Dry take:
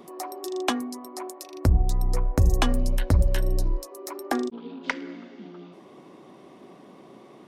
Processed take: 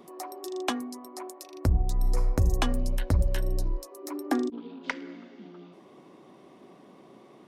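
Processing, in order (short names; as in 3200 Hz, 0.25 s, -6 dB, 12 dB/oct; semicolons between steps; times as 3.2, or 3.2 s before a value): 1.93–2.33 reverb throw, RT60 0.88 s, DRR 5 dB; 4.03–4.62 bell 290 Hz +15 dB 0.26 oct; gain -4 dB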